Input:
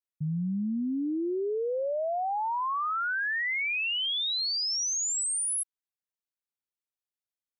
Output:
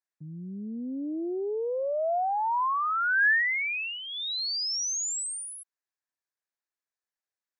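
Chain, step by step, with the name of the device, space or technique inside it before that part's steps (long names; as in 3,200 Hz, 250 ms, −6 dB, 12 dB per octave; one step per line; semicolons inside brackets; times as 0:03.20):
full-range speaker at full volume (highs frequency-modulated by the lows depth 0.12 ms; loudspeaker in its box 290–8,000 Hz, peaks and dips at 690 Hz +3 dB, 1,000 Hz +3 dB, 1,700 Hz +9 dB, 3,100 Hz −10 dB)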